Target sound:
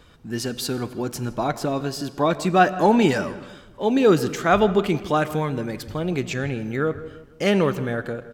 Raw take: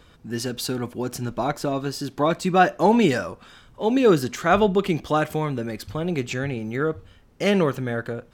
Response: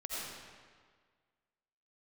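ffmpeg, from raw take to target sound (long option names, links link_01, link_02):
-filter_complex "[0:a]asplit=2[link_01][link_02];[link_02]adelay=162,lowpass=frequency=2100:poles=1,volume=-16dB,asplit=2[link_03][link_04];[link_04]adelay=162,lowpass=frequency=2100:poles=1,volume=0.44,asplit=2[link_05][link_06];[link_06]adelay=162,lowpass=frequency=2100:poles=1,volume=0.44,asplit=2[link_07][link_08];[link_08]adelay=162,lowpass=frequency=2100:poles=1,volume=0.44[link_09];[link_01][link_03][link_05][link_07][link_09]amix=inputs=5:normalize=0,asplit=2[link_10][link_11];[1:a]atrim=start_sample=2205,afade=type=out:start_time=0.43:duration=0.01,atrim=end_sample=19404[link_12];[link_11][link_12]afir=irnorm=-1:irlink=0,volume=-18.5dB[link_13];[link_10][link_13]amix=inputs=2:normalize=0"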